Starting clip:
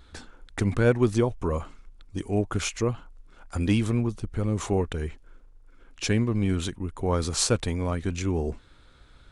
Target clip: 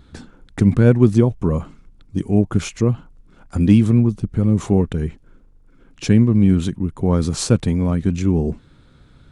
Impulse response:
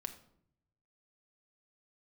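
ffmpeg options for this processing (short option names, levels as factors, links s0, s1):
-af "equalizer=f=170:w=0.67:g=14.5"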